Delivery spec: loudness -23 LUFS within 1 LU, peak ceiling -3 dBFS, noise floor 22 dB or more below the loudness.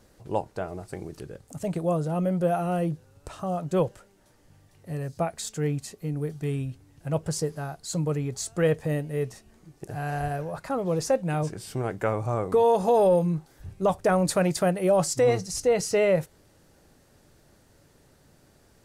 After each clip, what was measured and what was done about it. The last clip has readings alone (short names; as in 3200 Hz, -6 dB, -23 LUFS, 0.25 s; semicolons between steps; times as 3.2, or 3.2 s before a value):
loudness -26.5 LUFS; peak -14.0 dBFS; loudness target -23.0 LUFS
-> gain +3.5 dB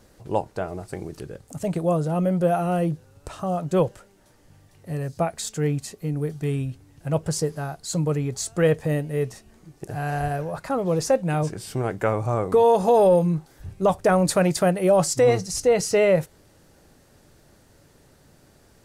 loudness -23.0 LUFS; peak -10.5 dBFS; noise floor -56 dBFS